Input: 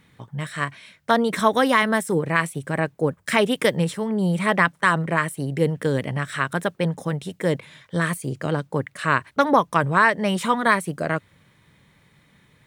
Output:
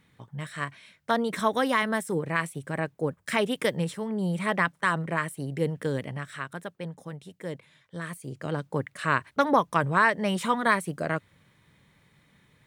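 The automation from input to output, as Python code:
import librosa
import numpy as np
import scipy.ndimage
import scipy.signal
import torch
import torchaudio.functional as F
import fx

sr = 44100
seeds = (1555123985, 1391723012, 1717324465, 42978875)

y = fx.gain(x, sr, db=fx.line((5.92, -6.5), (6.61, -13.5), (8.02, -13.5), (8.69, -4.5)))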